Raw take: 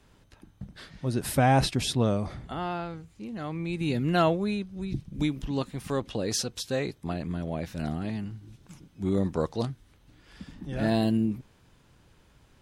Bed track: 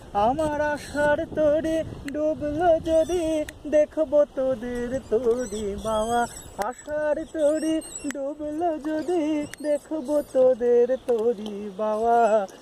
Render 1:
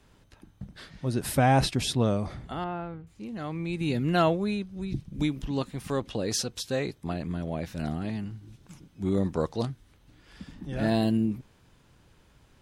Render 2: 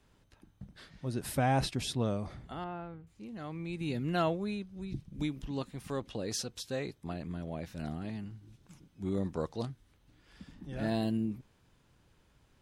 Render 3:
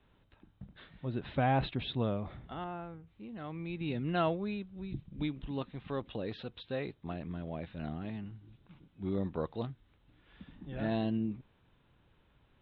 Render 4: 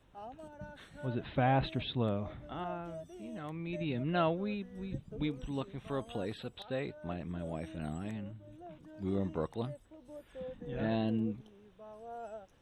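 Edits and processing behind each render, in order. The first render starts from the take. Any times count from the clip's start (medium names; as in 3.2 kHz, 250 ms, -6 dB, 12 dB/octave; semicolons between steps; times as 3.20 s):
2.64–3.07 s: distance through air 480 m
trim -7 dB
Chebyshev low-pass 3.8 kHz, order 6
add bed track -26 dB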